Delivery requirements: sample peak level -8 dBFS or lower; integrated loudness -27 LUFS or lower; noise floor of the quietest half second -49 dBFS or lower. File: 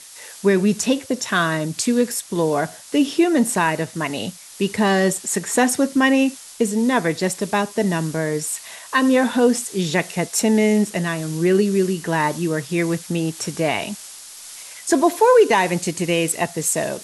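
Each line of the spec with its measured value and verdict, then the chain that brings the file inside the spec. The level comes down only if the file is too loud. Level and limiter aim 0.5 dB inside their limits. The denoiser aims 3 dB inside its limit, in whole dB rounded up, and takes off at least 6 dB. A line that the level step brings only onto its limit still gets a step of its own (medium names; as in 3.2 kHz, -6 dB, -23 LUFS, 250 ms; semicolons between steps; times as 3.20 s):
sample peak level -4.5 dBFS: fail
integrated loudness -19.5 LUFS: fail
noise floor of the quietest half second -39 dBFS: fail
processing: noise reduction 6 dB, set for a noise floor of -39 dBFS; trim -8 dB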